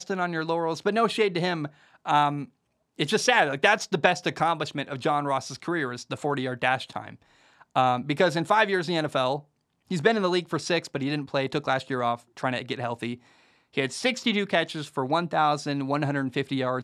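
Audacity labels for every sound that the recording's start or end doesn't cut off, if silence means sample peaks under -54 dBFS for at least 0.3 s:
2.960000	9.450000	sound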